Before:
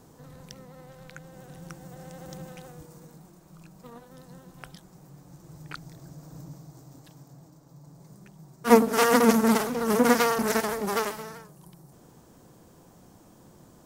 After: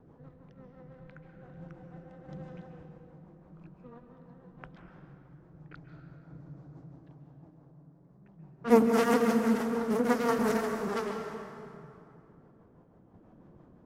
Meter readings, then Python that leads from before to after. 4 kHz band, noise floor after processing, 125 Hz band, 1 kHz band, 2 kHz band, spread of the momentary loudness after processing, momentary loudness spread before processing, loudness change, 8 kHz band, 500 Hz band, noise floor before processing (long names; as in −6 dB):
−10.5 dB, −59 dBFS, −3.5 dB, −7.0 dB, −7.5 dB, 22 LU, 20 LU, −5.5 dB, −13.0 dB, −4.0 dB, −55 dBFS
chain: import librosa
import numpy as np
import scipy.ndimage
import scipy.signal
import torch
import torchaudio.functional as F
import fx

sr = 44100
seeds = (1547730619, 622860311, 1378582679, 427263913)

y = fx.rotary(x, sr, hz=6.0)
y = fx.high_shelf(y, sr, hz=2900.0, db=-8.5)
y = fx.tremolo_random(y, sr, seeds[0], hz=3.5, depth_pct=55)
y = fx.env_lowpass(y, sr, base_hz=1800.0, full_db=-27.5)
y = fx.rev_plate(y, sr, seeds[1], rt60_s=2.6, hf_ratio=0.65, predelay_ms=120, drr_db=4.5)